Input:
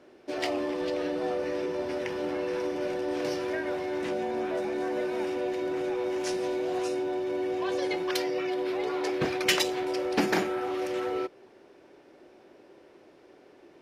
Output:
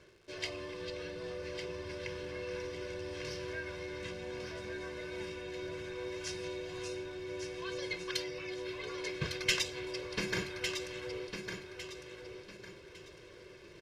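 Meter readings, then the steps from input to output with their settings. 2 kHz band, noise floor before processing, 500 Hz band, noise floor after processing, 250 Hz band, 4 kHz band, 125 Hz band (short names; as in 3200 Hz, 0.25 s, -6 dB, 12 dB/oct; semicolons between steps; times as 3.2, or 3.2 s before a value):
-4.5 dB, -56 dBFS, -11.5 dB, -54 dBFS, -12.5 dB, -4.0 dB, -0.5 dB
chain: passive tone stack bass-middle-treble 6-0-2; comb 1.9 ms, depth 91%; reverse; upward compressor, threshold -56 dBFS; reverse; crackle 280/s -62 dBFS; air absorption 52 m; feedback echo 1.154 s, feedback 31%, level -7 dB; gain +11.5 dB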